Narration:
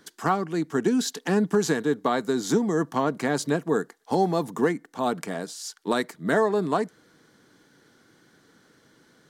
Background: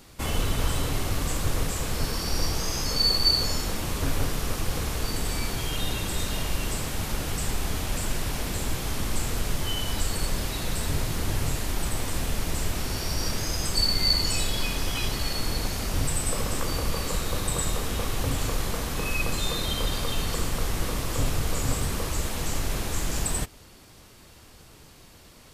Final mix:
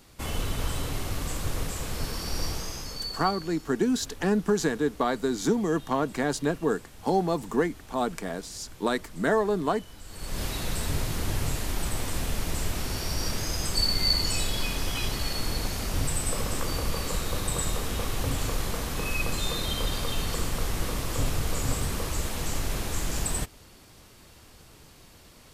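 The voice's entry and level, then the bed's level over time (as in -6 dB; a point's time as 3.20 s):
2.95 s, -2.0 dB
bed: 2.51 s -4 dB
3.49 s -19 dB
10.02 s -19 dB
10.42 s -1.5 dB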